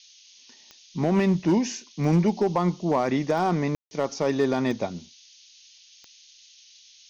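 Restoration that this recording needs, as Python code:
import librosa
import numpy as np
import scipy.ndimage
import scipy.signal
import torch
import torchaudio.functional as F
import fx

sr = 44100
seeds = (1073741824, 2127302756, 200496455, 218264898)

y = fx.fix_declip(x, sr, threshold_db=-14.5)
y = fx.fix_declick_ar(y, sr, threshold=10.0)
y = fx.fix_ambience(y, sr, seeds[0], print_start_s=5.78, print_end_s=6.28, start_s=3.75, end_s=3.91)
y = fx.noise_reduce(y, sr, print_start_s=5.78, print_end_s=6.28, reduce_db=17.0)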